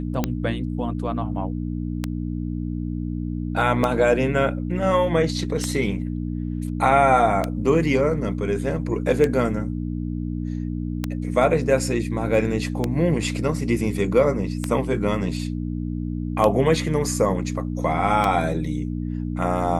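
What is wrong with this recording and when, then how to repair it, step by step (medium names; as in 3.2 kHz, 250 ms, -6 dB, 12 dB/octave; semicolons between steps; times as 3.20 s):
hum 60 Hz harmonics 5 -27 dBFS
tick 33 1/3 rpm -8 dBFS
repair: de-click; de-hum 60 Hz, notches 5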